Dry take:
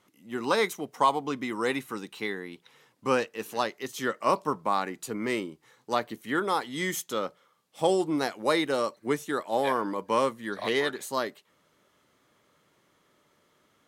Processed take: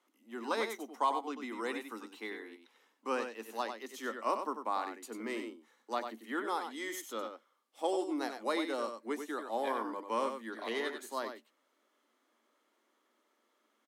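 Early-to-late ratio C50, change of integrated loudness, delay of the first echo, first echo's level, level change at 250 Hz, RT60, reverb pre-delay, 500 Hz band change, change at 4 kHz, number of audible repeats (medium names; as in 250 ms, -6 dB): no reverb, -8.5 dB, 95 ms, -7.5 dB, -8.5 dB, no reverb, no reverb, -9.0 dB, -9.5 dB, 1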